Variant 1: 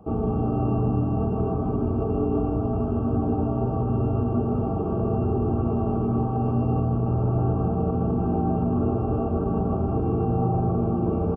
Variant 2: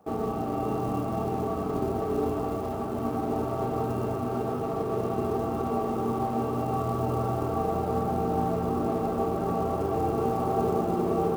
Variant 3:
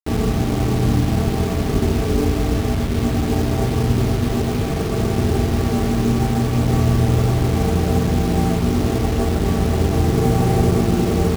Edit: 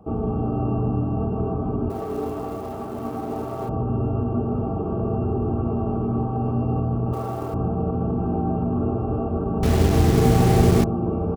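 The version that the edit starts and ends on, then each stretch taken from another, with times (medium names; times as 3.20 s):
1
1.90–3.69 s: from 2
7.13–7.54 s: from 2
9.63–10.84 s: from 3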